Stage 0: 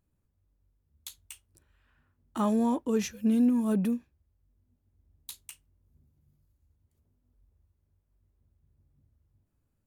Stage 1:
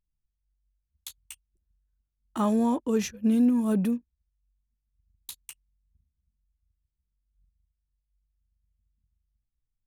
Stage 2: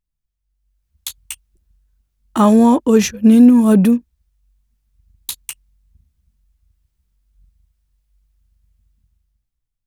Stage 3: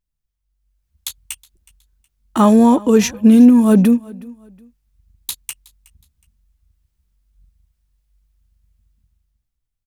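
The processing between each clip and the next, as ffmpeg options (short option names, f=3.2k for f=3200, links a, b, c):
-af "anlmdn=0.00398,volume=2dB"
-af "dynaudnorm=f=170:g=9:m=13dB,volume=2dB"
-af "aecho=1:1:368|736:0.0708|0.0212"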